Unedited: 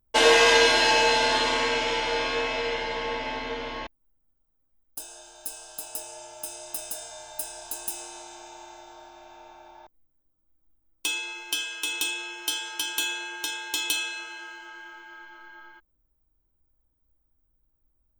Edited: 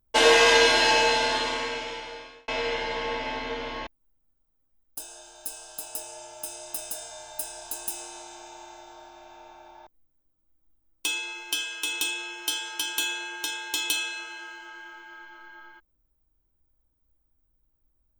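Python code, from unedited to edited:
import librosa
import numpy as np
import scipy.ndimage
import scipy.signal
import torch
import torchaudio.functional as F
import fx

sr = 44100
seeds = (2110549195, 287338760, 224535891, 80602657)

y = fx.edit(x, sr, fx.fade_out_span(start_s=0.93, length_s=1.55), tone=tone)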